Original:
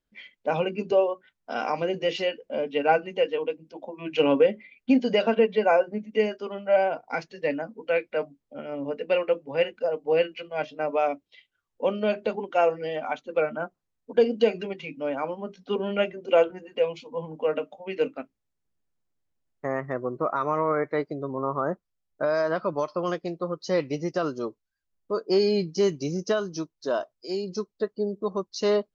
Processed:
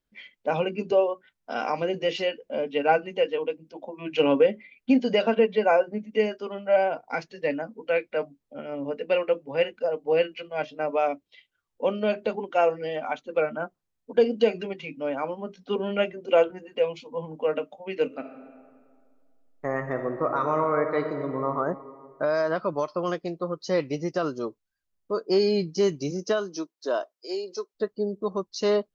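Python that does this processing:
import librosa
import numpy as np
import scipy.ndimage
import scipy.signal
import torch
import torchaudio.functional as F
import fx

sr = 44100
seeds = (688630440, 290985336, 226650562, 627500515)

y = fx.reverb_throw(x, sr, start_s=18.05, length_s=3.45, rt60_s=2.0, drr_db=5.5)
y = fx.highpass(y, sr, hz=fx.line((26.1, 180.0), (27.74, 390.0)), slope=24, at=(26.1, 27.74), fade=0.02)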